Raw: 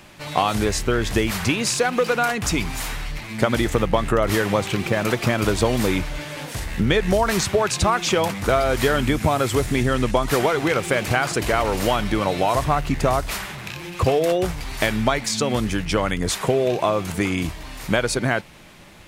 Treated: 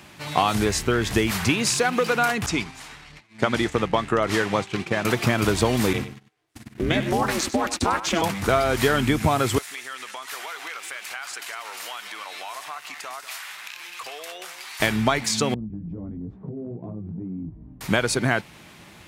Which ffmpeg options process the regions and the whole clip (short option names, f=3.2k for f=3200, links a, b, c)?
-filter_complex "[0:a]asettb=1/sr,asplit=3[a][b][c];[a]atrim=end=2.464[d];[b]atrim=start=2.46:end=5.05,asetpts=PTS-STARTPTS,afade=t=in:d=0.004:c=qsin,afade=t=out:st=2.586:d=0.004:c=qsin,lowpass=8.1k,agate=range=-33dB:threshold=-21dB:ratio=3:release=100:detection=peak,lowshelf=f=150:g=-6.5[e];[c]atrim=start=5.046[f];[d][e]acrossfade=d=0.004:c1=hsin:c2=qsin[g];[g][f]acrossfade=d=0.004:c1=qsin:c2=hsin,asettb=1/sr,asplit=3[h][i][j];[h]atrim=end=5.934[k];[i]atrim=start=5.93:end=8.22,asetpts=PTS-STARTPTS,afade=t=in:d=0.004:c=qsin,afade=t=out:st=2.286:d=0.004:c=qsin,agate=range=-39dB:threshold=-26dB:ratio=16:release=100:detection=peak,aeval=exprs='val(0)*sin(2*PI*170*n/s)':c=same,aecho=1:1:98:0.237,atrim=end_sample=100989[l];[j]atrim=start=8.216[m];[k][l]acrossfade=d=0.004:c1=hsin:c2=qsin[n];[n][m]acrossfade=d=0.004:c1=qsin:c2=hsin,asettb=1/sr,asplit=3[o][p][q];[o]atrim=end=9.584[r];[p]atrim=start=9.58:end=14.8,asetpts=PTS-STARTPTS,afade=t=in:d=0.004:c=qsin,afade=t=out:st=5.216:d=0.004:c=qsin,highpass=1.2k,acompressor=threshold=-34dB:ratio=2.5:attack=3.2:release=140:knee=1:detection=peak,aecho=1:1:194:0.237,atrim=end_sample=230202[s];[q]atrim=start=14.796[t];[r][s]acrossfade=d=0.004:c1=hsin:c2=qsin[u];[u][t]acrossfade=d=0.004:c1=qsin:c2=hsin,asettb=1/sr,asplit=3[v][w][x];[v]atrim=end=15.544[y];[w]atrim=start=15.54:end=17.81,asetpts=PTS-STARTPTS,afade=t=in:d=0.004:c=qsin,afade=t=out:st=2.266:d=0.004:c=qsin,flanger=delay=16.5:depth=2.9:speed=2.3,lowpass=f=230:t=q:w=1.5,acompressor=threshold=-29dB:ratio=6:attack=3.2:release=140:knee=1:detection=peak[z];[x]atrim=start=17.806[aa];[y][z]acrossfade=d=0.004:c1=hsin:c2=qsin[ab];[ab][aa]acrossfade=d=0.004:c1=qsin:c2=hsin,highpass=69,equalizer=f=550:w=3.6:g=-4.5"